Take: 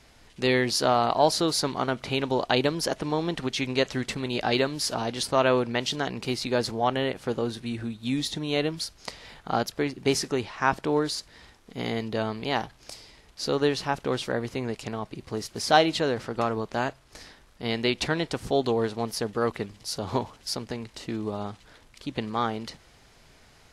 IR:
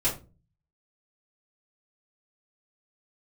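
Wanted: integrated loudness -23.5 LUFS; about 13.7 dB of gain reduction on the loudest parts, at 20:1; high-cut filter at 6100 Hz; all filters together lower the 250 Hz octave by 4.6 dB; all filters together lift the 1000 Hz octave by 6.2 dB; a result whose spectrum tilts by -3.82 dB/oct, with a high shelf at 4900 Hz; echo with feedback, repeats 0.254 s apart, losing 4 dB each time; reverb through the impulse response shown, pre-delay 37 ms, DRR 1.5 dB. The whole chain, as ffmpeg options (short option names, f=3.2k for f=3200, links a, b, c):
-filter_complex "[0:a]lowpass=6.1k,equalizer=f=250:t=o:g=-6.5,equalizer=f=1k:t=o:g=9,highshelf=f=4.9k:g=-4.5,acompressor=threshold=-23dB:ratio=20,aecho=1:1:254|508|762|1016|1270|1524|1778|2032|2286:0.631|0.398|0.25|0.158|0.0994|0.0626|0.0394|0.0249|0.0157,asplit=2[a][b];[1:a]atrim=start_sample=2205,adelay=37[c];[b][c]afir=irnorm=-1:irlink=0,volume=-11dB[d];[a][d]amix=inputs=2:normalize=0,volume=3dB"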